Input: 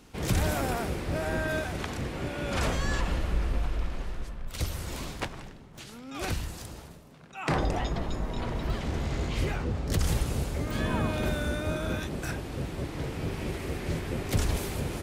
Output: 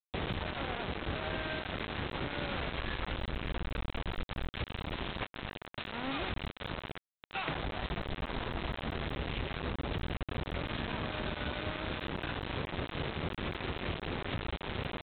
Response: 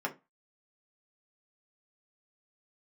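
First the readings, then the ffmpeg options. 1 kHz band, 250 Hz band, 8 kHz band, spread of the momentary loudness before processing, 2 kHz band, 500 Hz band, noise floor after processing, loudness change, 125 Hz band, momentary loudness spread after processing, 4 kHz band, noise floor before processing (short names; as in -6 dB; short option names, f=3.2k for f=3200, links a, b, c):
-3.5 dB, -6.5 dB, under -40 dB, 11 LU, -2.5 dB, -6.0 dB, under -85 dBFS, -6.0 dB, -8.5 dB, 4 LU, -0.5 dB, -48 dBFS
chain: -af "acompressor=threshold=-41dB:ratio=16,aresample=8000,acrusher=bits=6:mix=0:aa=0.000001,aresample=44100,volume=6.5dB"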